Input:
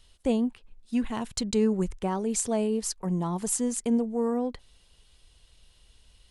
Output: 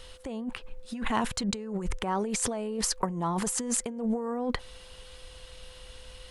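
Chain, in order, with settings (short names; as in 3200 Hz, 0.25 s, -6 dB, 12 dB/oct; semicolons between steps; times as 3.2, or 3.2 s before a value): negative-ratio compressor -35 dBFS, ratio -1; bell 1300 Hz +8 dB 2.1 oct; whine 510 Hz -56 dBFS; gain +2.5 dB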